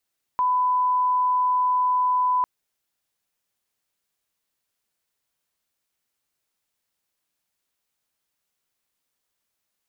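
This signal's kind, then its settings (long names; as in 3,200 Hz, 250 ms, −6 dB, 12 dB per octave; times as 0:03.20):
line-up tone −18 dBFS 2.05 s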